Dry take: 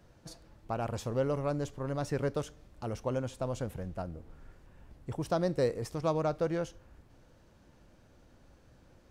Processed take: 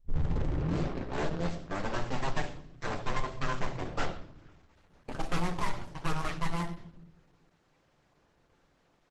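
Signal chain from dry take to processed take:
turntable start at the beginning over 2.37 s
low-pass filter 2,300 Hz 6 dB per octave
low-shelf EQ 480 Hz −8 dB
comb filter 5.9 ms, depth 81%
hum removal 51.22 Hz, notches 6
dynamic equaliser 160 Hz, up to −5 dB, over −52 dBFS, Q 3.3
speech leveller within 5 dB 0.5 s
full-wave rectification
harmonic generator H 2 −6 dB, 5 −22 dB, 8 −10 dB, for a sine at −31 dBFS
convolution reverb RT60 0.70 s, pre-delay 7 ms, DRR 1.5 dB
Opus 12 kbit/s 48,000 Hz

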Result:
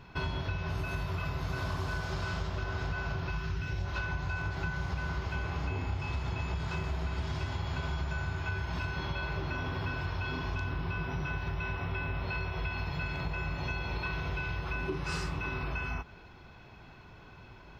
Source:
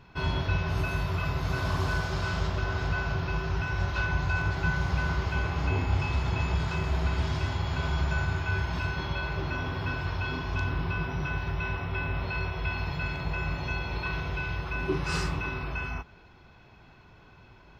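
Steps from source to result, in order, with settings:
0:03.29–0:03.84: parametric band 380 Hz → 1,400 Hz −10.5 dB 1.3 octaves
downward compressor, threshold −33 dBFS, peak gain reduction 11.5 dB
level +2 dB

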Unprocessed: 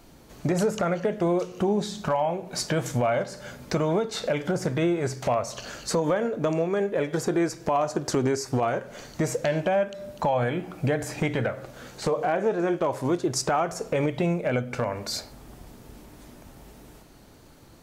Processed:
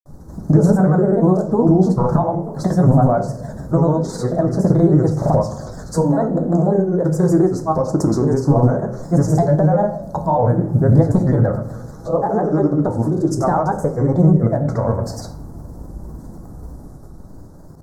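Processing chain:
bass and treble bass +9 dB, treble −5 dB
hum removal 45.94 Hz, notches 12
granular cloud, pitch spread up and down by 3 semitones
Butterworth band-reject 2,700 Hz, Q 0.58
on a send: convolution reverb RT60 0.60 s, pre-delay 6 ms, DRR 6.5 dB
on the sum: level +7 dB

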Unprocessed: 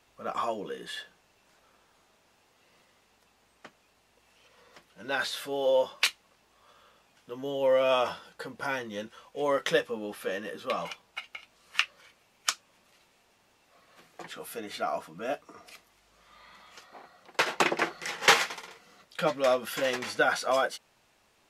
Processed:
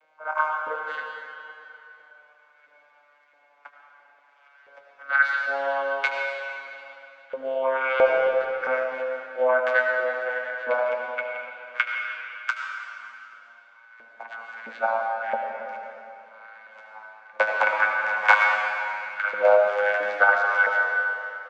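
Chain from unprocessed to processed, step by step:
vocoder with a gliding carrier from D#3, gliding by −8 semitones
low-pass filter 3,000 Hz 6 dB per octave
low shelf with overshoot 660 Hz −10.5 dB, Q 1.5
mains-hum notches 50/100/150/200 Hz
hollow resonant body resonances 220/520/1,500/2,200 Hz, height 18 dB, ringing for 50 ms
auto-filter high-pass saw up 1.5 Hz 470–1,900 Hz
single-tap delay 76 ms −15 dB
convolution reverb RT60 2.7 s, pre-delay 55 ms, DRR 1 dB

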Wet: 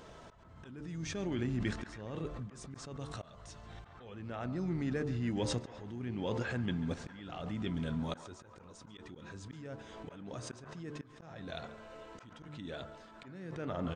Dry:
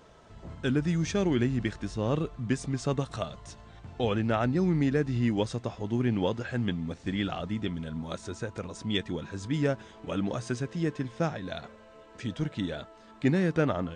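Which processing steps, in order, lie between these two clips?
hum removal 74.37 Hz, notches 19
pitch-shifted copies added −5 semitones −16 dB
reversed playback
downward compressor 16 to 1, threshold −34 dBFS, peak gain reduction 15.5 dB
reversed playback
volume swells 721 ms
on a send: feedback echo with a band-pass in the loop 139 ms, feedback 78%, band-pass 1,200 Hz, level −15 dB
on the sum: background raised ahead of every attack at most 36 dB per second
level +2.5 dB

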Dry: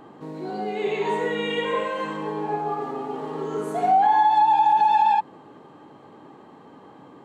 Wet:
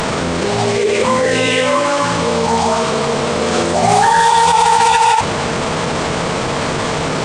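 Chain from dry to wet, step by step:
linear delta modulator 64 kbit/s, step −26.5 dBFS
phase-vocoder pitch shift with formants kept −10.5 semitones
boost into a limiter +10 dB
envelope flattener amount 50%
level −2 dB

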